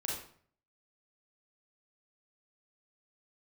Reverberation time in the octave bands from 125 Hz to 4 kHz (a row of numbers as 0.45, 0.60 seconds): 0.75, 0.60, 0.55, 0.50, 0.50, 0.40 seconds